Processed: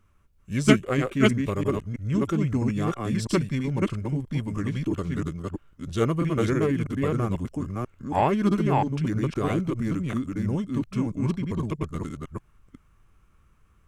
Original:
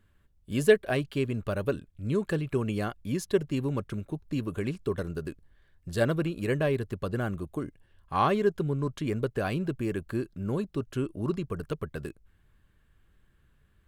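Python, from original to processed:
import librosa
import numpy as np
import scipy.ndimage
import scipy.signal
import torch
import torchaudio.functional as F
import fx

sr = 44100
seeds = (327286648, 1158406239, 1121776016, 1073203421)

y = fx.reverse_delay(x, sr, ms=327, wet_db=-2.0)
y = fx.formant_shift(y, sr, semitones=-4)
y = y * librosa.db_to_amplitude(2.5)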